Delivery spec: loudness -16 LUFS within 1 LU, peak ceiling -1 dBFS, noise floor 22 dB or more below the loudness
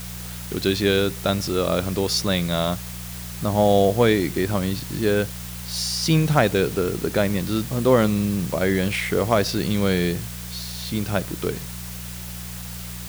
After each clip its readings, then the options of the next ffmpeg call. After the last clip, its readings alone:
hum 60 Hz; harmonics up to 180 Hz; hum level -33 dBFS; noise floor -34 dBFS; noise floor target -44 dBFS; loudness -22.0 LUFS; peak -4.5 dBFS; loudness target -16.0 LUFS
-> -af "bandreject=f=60:t=h:w=4,bandreject=f=120:t=h:w=4,bandreject=f=180:t=h:w=4"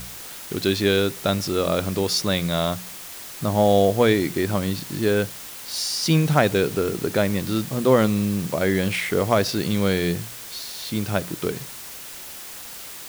hum none; noise floor -38 dBFS; noise floor target -45 dBFS
-> -af "afftdn=nr=7:nf=-38"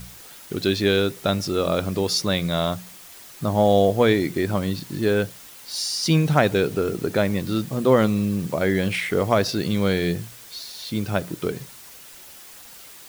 noise floor -44 dBFS; noise floor target -45 dBFS
-> -af "afftdn=nr=6:nf=-44"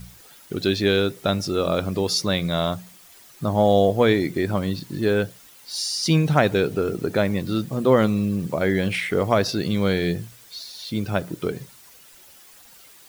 noise floor -49 dBFS; loudness -22.5 LUFS; peak -5.0 dBFS; loudness target -16.0 LUFS
-> -af "volume=6.5dB,alimiter=limit=-1dB:level=0:latency=1"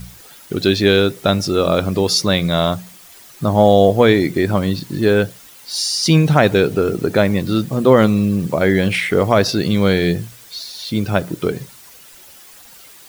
loudness -16.0 LUFS; peak -1.0 dBFS; noise floor -43 dBFS

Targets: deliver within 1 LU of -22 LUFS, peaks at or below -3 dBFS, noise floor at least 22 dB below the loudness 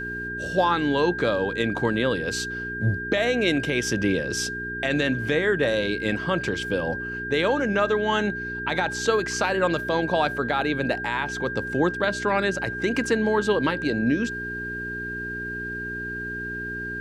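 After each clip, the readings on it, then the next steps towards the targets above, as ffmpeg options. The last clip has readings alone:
hum 60 Hz; harmonics up to 420 Hz; hum level -34 dBFS; steady tone 1600 Hz; tone level -30 dBFS; loudness -24.5 LUFS; peak -9.5 dBFS; loudness target -22.0 LUFS
-> -af "bandreject=f=60:t=h:w=4,bandreject=f=120:t=h:w=4,bandreject=f=180:t=h:w=4,bandreject=f=240:t=h:w=4,bandreject=f=300:t=h:w=4,bandreject=f=360:t=h:w=4,bandreject=f=420:t=h:w=4"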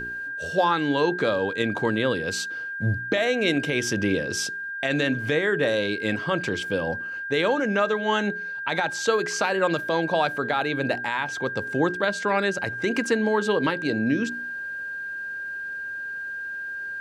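hum none; steady tone 1600 Hz; tone level -30 dBFS
-> -af "bandreject=f=1.6k:w=30"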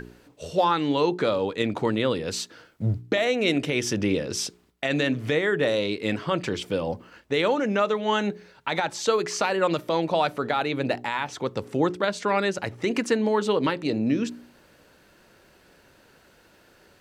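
steady tone none; loudness -25.5 LUFS; peak -10.0 dBFS; loudness target -22.0 LUFS
-> -af "volume=3.5dB"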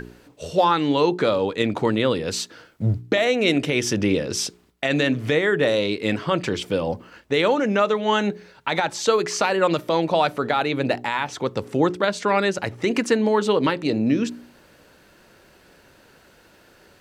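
loudness -22.0 LUFS; peak -6.5 dBFS; noise floor -54 dBFS

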